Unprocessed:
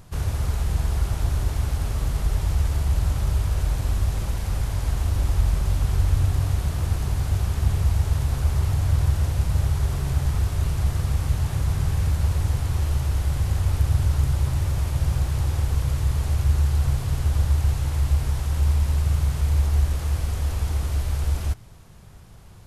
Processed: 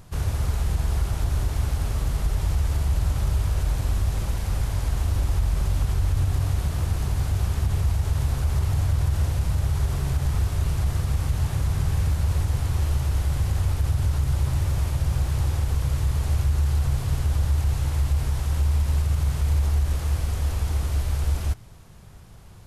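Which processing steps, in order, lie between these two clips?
limiter -14.5 dBFS, peak gain reduction 5.5 dB

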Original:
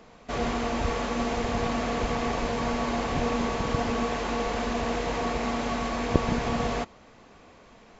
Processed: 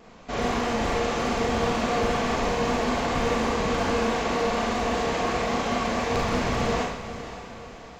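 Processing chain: vibrato 4.9 Hz 58 cents; wavefolder -21 dBFS; on a send: diffused feedback echo 0.537 s, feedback 49%, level -12 dB; on the sum: Schroeder reverb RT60 0.62 s, combs from 32 ms, DRR -1.5 dB

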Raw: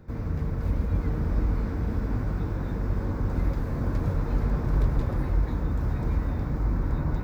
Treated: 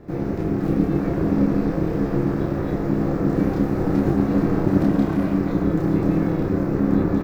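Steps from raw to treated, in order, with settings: 4.8–5.39 minimum comb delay 2.3 ms; ring modulator 240 Hz; on a send: loudspeakers at several distances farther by 10 m -2 dB, 40 m -12 dB; on the sum: gain +7 dB

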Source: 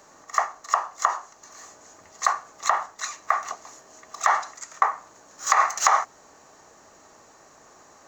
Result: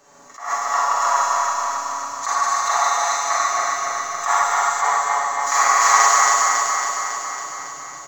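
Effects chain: regenerating reverse delay 0.138 s, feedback 82%, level -2 dB; comb 7.1 ms, depth 83%; on a send: thin delay 73 ms, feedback 72%, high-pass 3600 Hz, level -6 dB; on the sum: Schroeder reverb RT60 1.5 s, combs from 32 ms, DRR -5 dB; attack slew limiter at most 120 dB/s; gain -4.5 dB

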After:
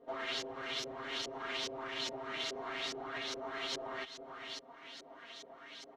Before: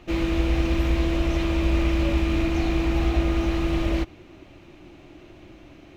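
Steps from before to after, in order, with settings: minimum comb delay 4.3 ms; bell 2500 Hz -11.5 dB 0.31 oct; echo 0.551 s -17 dB; LFO low-pass saw up 2.4 Hz 430–5800 Hz; compressor 4:1, threshold -33 dBFS, peak gain reduction 12.5 dB; differentiator; notch 4800 Hz, Q 18; comb 7.5 ms, depth 86%; gain +12.5 dB

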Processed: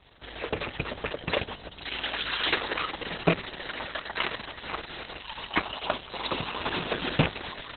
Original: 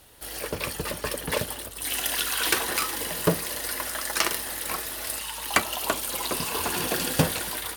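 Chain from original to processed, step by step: rattling part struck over -28 dBFS, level -13 dBFS; reverse; upward compressor, threshold -44 dBFS; reverse; Opus 6 kbps 48000 Hz

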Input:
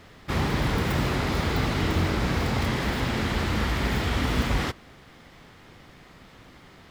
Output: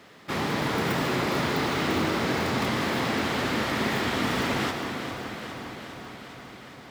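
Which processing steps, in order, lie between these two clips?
HPF 190 Hz 12 dB/oct; echo with dull and thin repeats by turns 0.203 s, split 1500 Hz, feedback 84%, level -8.5 dB; on a send at -6 dB: reverb RT60 4.4 s, pre-delay 73 ms

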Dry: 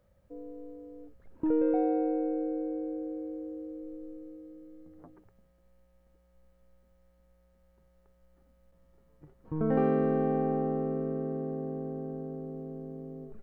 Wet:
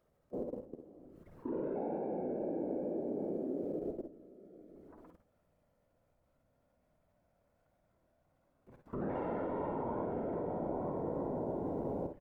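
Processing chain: speed glide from 97% -> 123%; feedback echo 0.12 s, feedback 36%, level -17.5 dB; in parallel at -0.5 dB: compressor, threshold -36 dBFS, peak gain reduction 13.5 dB; on the sum: bell 1000 Hz +4.5 dB 0.78 oct; wow and flutter 29 cents; low shelf 66 Hz -10.5 dB; whisperiser; level quantiser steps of 19 dB; early reflections 52 ms -8 dB, 64 ms -10.5 dB

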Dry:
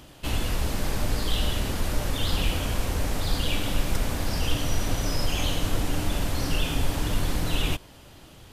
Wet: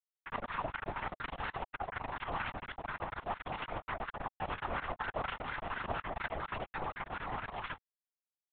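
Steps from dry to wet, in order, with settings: resonator 81 Hz, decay 0.64 s, harmonics all, mix 60%; in parallel at -8.5 dB: overloaded stage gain 28 dB; on the sum: LPF 2600 Hz 24 dB/oct; on a send at -13 dB: reverb RT60 5.5 s, pre-delay 5 ms; on the sum: bit-crush 4-bit; comb 4.5 ms, depth 46%; limiter -20 dBFS, peak gain reduction 24 dB; wah 4.2 Hz 710–1600 Hz, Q 2.2; LPC vocoder at 8 kHz whisper; gain +4 dB

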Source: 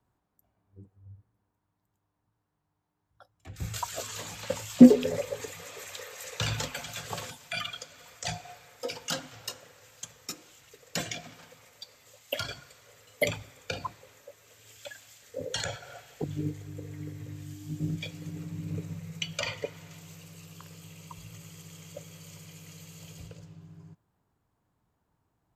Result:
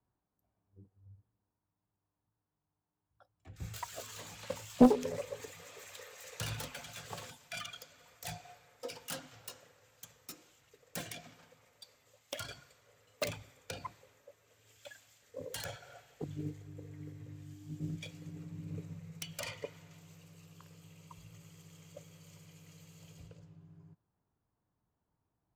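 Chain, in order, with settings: self-modulated delay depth 0.66 ms; mismatched tape noise reduction decoder only; gain -7.5 dB

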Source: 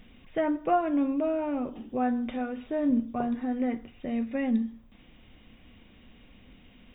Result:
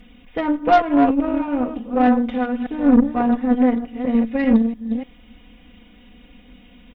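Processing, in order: reverse delay 0.296 s, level -7 dB; comb 4.1 ms, depth 96%; added harmonics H 2 -14 dB, 6 -23 dB, 7 -28 dB, 8 -33 dB, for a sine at -10 dBFS; gain +5.5 dB

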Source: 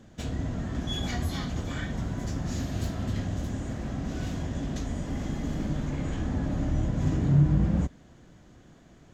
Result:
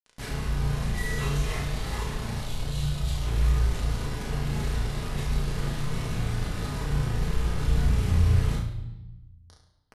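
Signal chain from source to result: spectral gain 2.19–2.96, 280–4700 Hz -20 dB; dynamic EQ 780 Hz, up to +4 dB, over -58 dBFS, Q 6.7; in parallel at +2.5 dB: compressor 12:1, threshold -48 dBFS, peak gain reduction 31.5 dB; on the sum: bit-crush 6-bit; chorus 0.27 Hz, delay 19 ms, depth 6.7 ms; pitch shift -8 st; flutter echo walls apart 5.5 m, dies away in 0.39 s; on a send at -2 dB: reverb RT60 0.90 s, pre-delay 4 ms; on the sum: speed mistake 48 kHz file played as 44.1 kHz

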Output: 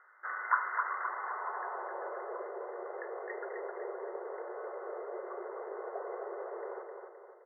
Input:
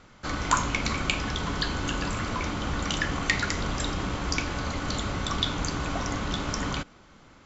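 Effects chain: band-pass sweep 1500 Hz -> 470 Hz, 0.68–2.33; feedback echo 0.26 s, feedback 47%, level -5 dB; FFT band-pass 350–2100 Hz

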